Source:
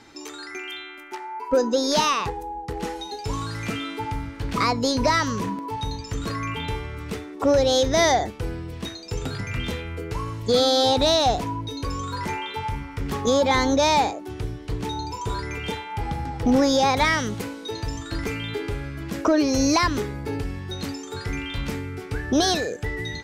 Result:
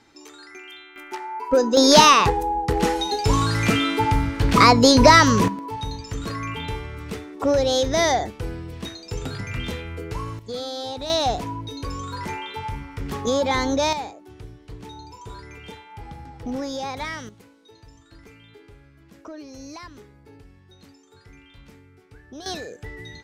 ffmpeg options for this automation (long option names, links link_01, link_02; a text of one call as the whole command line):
ffmpeg -i in.wav -af "asetnsamples=nb_out_samples=441:pad=0,asendcmd='0.96 volume volume 2dB;1.77 volume volume 9dB;5.48 volume volume -1dB;10.39 volume volume -12dB;11.1 volume volume -2dB;13.93 volume volume -10.5dB;17.29 volume volume -19.5dB;22.46 volume volume -8.5dB',volume=-7dB" out.wav